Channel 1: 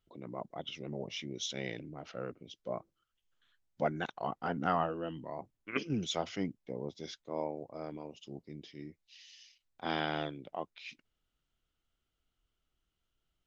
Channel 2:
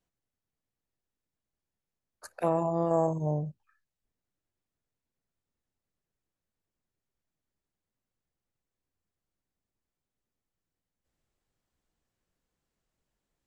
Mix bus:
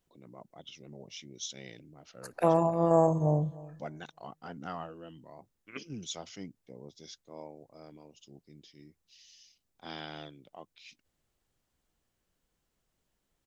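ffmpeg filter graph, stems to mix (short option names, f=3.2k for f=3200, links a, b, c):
-filter_complex "[0:a]bass=f=250:g=3,treble=f=4k:g=14,volume=-9.5dB,asplit=2[a][b];[1:a]volume=3dB,asplit=2[c][d];[d]volume=-20dB[e];[b]apad=whole_len=593915[f];[c][f]sidechaincompress=threshold=-44dB:ratio=8:attack=8.2:release=162[g];[e]aecho=0:1:306|612|918|1224:1|0.22|0.0484|0.0106[h];[a][g][h]amix=inputs=3:normalize=0"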